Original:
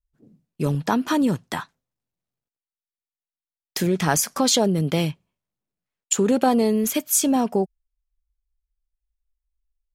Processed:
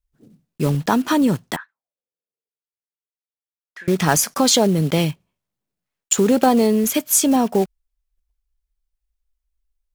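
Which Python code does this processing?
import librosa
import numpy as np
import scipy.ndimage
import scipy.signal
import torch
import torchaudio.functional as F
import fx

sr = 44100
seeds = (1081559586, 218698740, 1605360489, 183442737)

y = fx.block_float(x, sr, bits=5)
y = fx.auto_wah(y, sr, base_hz=440.0, top_hz=1700.0, q=6.1, full_db=-31.5, direction='up', at=(1.56, 3.88))
y = y * 10.0 ** (3.5 / 20.0)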